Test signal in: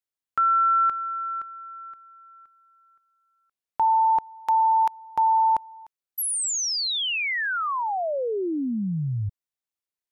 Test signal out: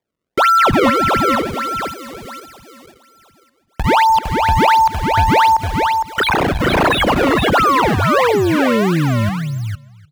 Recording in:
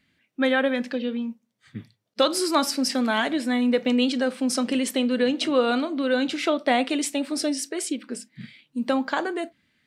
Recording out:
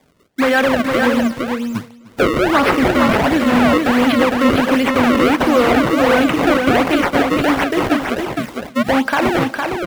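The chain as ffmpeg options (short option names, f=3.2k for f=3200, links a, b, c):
-filter_complex "[0:a]acrusher=samples=31:mix=1:aa=0.000001:lfo=1:lforange=49.6:lforate=1.4,apsyclip=21.5dB,highpass=f=74:p=1,equalizer=f=170:w=0.32:g=-4,asplit=2[a][b];[b]adelay=302,lowpass=f=4.9k:p=1,volume=-20.5dB,asplit=2[c][d];[d]adelay=302,lowpass=f=4.9k:p=1,volume=0.25[e];[c][e]amix=inputs=2:normalize=0[f];[a][f]amix=inputs=2:normalize=0,acrossover=split=3000[g][h];[h]acompressor=threshold=-26dB:ratio=4:attack=1:release=60[i];[g][i]amix=inputs=2:normalize=0,asplit=2[j][k];[k]aecho=0:1:459:0.596[l];[j][l]amix=inputs=2:normalize=0,volume=-7dB"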